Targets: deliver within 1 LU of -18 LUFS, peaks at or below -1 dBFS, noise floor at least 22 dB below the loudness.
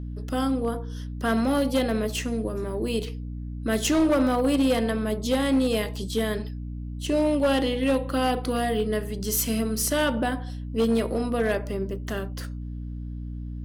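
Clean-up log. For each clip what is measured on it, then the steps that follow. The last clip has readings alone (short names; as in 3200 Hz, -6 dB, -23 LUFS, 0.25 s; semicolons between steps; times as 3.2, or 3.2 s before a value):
clipped 1.4%; flat tops at -16.5 dBFS; hum 60 Hz; harmonics up to 300 Hz; hum level -31 dBFS; loudness -25.5 LUFS; peak -16.5 dBFS; loudness target -18.0 LUFS
-> clip repair -16.5 dBFS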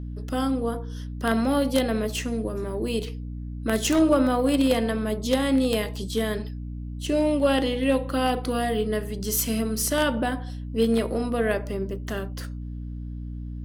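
clipped 0.0%; hum 60 Hz; harmonics up to 300 Hz; hum level -31 dBFS
-> notches 60/120/180/240/300 Hz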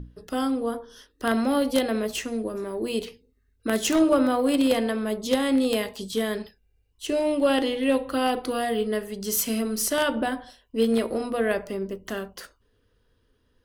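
hum none; loudness -25.5 LUFS; peak -7.0 dBFS; loudness target -18.0 LUFS
-> gain +7.5 dB; limiter -1 dBFS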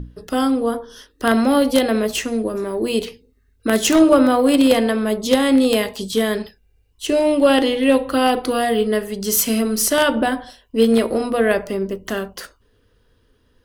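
loudness -18.0 LUFS; peak -1.0 dBFS; noise floor -60 dBFS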